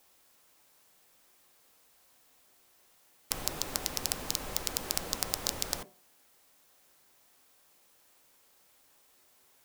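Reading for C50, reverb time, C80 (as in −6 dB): 19.5 dB, non-exponential decay, 25.5 dB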